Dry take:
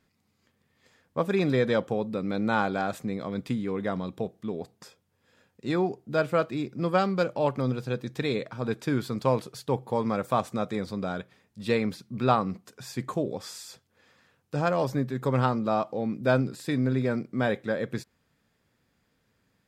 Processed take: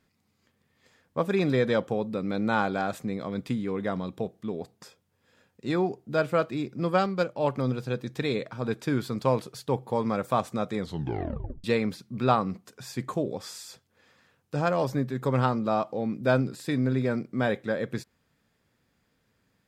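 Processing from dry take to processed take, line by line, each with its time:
0:07.06–0:07.47: expander for the loud parts, over −32 dBFS
0:10.80: tape stop 0.84 s

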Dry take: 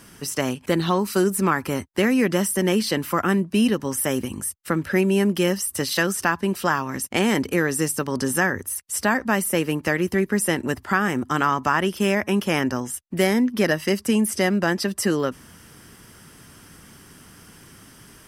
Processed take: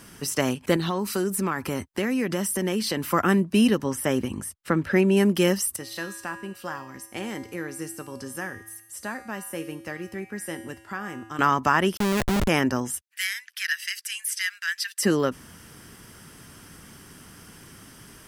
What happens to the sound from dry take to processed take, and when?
0:00.76–0:03.12: downward compressor 2.5 to 1, threshold −24 dBFS
0:03.84–0:05.17: low-pass filter 4,000 Hz 6 dB per octave
0:05.76–0:11.39: tuned comb filter 110 Hz, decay 0.94 s, harmonics odd, mix 80%
0:11.97–0:12.48: comparator with hysteresis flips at −24.5 dBFS
0:13.01–0:15.03: elliptic high-pass filter 1,600 Hz, stop band 80 dB

